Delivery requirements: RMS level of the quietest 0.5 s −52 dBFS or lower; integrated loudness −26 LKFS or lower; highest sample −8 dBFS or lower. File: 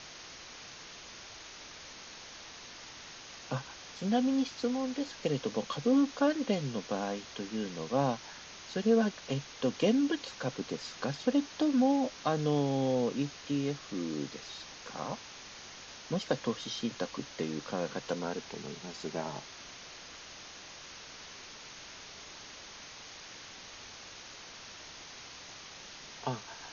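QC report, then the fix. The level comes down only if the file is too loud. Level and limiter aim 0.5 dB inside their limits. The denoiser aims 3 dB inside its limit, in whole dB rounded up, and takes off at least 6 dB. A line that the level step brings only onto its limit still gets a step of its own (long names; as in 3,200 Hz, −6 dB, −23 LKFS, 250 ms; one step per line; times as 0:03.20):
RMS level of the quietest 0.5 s −49 dBFS: out of spec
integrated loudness −33.0 LKFS: in spec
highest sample −15.5 dBFS: in spec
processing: broadband denoise 6 dB, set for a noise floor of −49 dBFS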